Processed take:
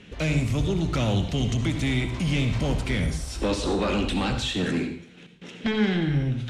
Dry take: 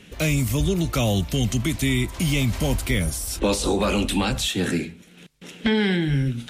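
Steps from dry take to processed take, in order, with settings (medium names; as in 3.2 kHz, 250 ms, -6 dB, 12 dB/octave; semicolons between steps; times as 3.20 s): saturation -19.5 dBFS, distortion -14 dB; distance through air 95 m; on a send: reverberation RT60 0.50 s, pre-delay 58 ms, DRR 7.5 dB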